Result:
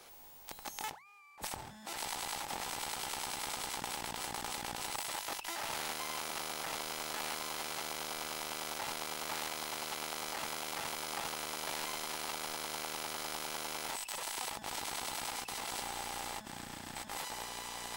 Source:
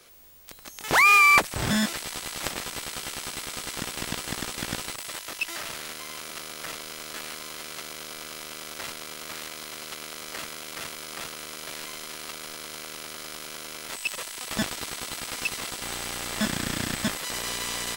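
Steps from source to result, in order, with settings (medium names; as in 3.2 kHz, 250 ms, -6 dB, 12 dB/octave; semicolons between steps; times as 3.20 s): compressor with a negative ratio -37 dBFS, ratio -1; peaking EQ 840 Hz +13.5 dB 0.4 oct; hum notches 60/120/180 Hz; trim -7.5 dB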